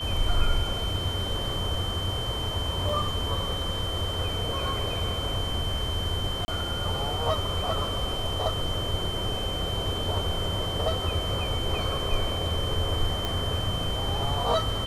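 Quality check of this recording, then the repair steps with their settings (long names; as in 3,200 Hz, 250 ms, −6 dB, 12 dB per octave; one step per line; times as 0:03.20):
whistle 3,100 Hz −32 dBFS
0:02.89: drop-out 3.3 ms
0:06.45–0:06.48: drop-out 30 ms
0:13.25: click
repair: click removal
notch filter 3,100 Hz, Q 30
repair the gap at 0:02.89, 3.3 ms
repair the gap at 0:06.45, 30 ms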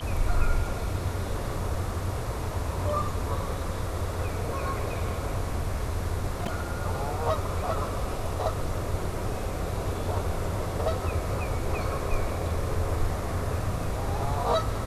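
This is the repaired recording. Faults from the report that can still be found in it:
none of them is left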